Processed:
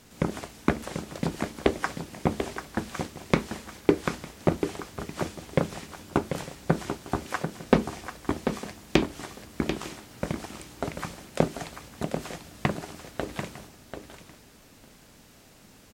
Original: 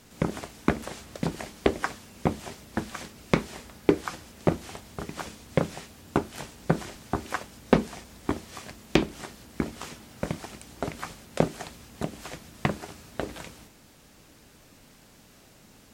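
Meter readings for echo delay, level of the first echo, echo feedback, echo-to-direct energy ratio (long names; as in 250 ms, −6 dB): 740 ms, −8.0 dB, repeats not evenly spaced, −7.5 dB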